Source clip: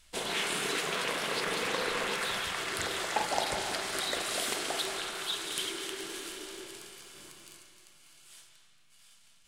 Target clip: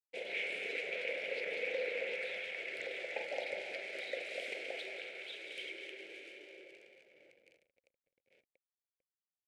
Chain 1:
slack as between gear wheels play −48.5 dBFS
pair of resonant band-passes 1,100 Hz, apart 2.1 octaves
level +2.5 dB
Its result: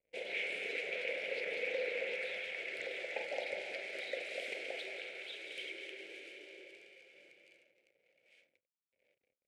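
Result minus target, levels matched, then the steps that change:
slack as between gear wheels: distortion −6 dB
change: slack as between gear wheels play −41.5 dBFS

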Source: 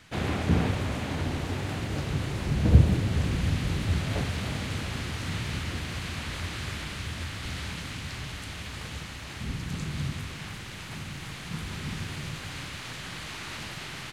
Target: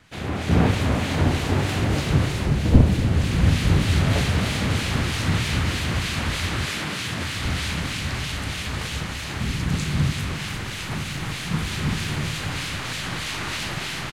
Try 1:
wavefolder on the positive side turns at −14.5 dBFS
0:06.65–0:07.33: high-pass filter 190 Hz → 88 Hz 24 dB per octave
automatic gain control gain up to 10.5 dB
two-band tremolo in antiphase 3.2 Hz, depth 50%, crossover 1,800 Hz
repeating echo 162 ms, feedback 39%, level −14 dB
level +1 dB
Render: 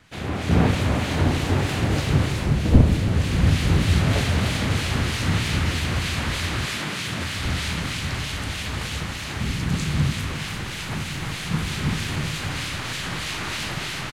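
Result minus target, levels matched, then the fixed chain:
echo 79 ms early
wavefolder on the positive side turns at −14.5 dBFS
0:06.65–0:07.33: high-pass filter 190 Hz → 88 Hz 24 dB per octave
automatic gain control gain up to 10.5 dB
two-band tremolo in antiphase 3.2 Hz, depth 50%, crossover 1,800 Hz
repeating echo 241 ms, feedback 39%, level −14 dB
level +1 dB

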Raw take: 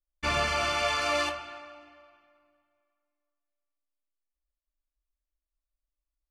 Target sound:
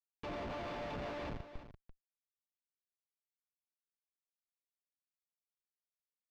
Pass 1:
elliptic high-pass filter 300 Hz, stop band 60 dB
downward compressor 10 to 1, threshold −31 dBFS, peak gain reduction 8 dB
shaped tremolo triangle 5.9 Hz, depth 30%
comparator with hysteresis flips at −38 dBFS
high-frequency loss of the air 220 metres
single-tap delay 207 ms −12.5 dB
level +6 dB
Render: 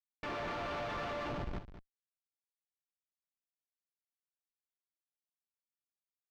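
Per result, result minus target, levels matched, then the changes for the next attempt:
echo 132 ms early; 2,000 Hz band +2.5 dB
change: single-tap delay 339 ms −12.5 dB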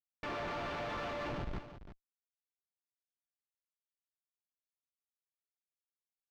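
2,000 Hz band +2.5 dB
add after downward compressor: Butterworth band-reject 1,600 Hz, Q 1

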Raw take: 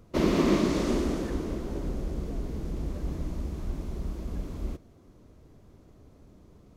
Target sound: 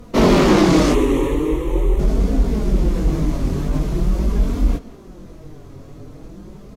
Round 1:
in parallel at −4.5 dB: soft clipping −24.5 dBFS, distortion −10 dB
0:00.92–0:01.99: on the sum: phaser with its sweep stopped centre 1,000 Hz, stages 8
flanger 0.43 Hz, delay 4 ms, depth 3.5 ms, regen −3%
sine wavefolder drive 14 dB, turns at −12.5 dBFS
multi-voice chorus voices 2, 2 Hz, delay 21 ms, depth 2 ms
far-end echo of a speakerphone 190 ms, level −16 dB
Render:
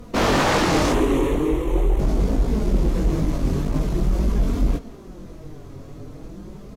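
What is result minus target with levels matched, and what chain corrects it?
sine wavefolder: distortion +10 dB
in parallel at −4.5 dB: soft clipping −24.5 dBFS, distortion −10 dB
0:00.92–0:01.99: on the sum: phaser with its sweep stopped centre 1,000 Hz, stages 8
flanger 0.43 Hz, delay 4 ms, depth 3.5 ms, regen −3%
sine wavefolder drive 14 dB, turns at −5.5 dBFS
multi-voice chorus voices 2, 2 Hz, delay 21 ms, depth 2 ms
far-end echo of a speakerphone 190 ms, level −16 dB

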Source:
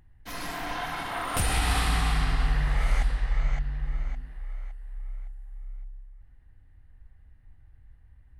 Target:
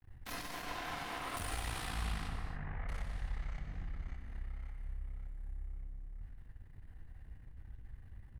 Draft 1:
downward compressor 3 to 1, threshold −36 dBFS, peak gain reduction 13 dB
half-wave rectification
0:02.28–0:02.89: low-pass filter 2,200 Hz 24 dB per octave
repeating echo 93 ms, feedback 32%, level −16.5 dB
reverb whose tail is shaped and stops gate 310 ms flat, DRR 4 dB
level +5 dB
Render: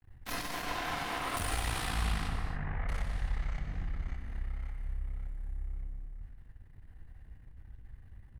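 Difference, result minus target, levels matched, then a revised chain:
downward compressor: peak gain reduction −6 dB
downward compressor 3 to 1, threshold −45 dBFS, peak gain reduction 19 dB
half-wave rectification
0:02.28–0:02.89: low-pass filter 2,200 Hz 24 dB per octave
repeating echo 93 ms, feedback 32%, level −16.5 dB
reverb whose tail is shaped and stops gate 310 ms flat, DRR 4 dB
level +5 dB

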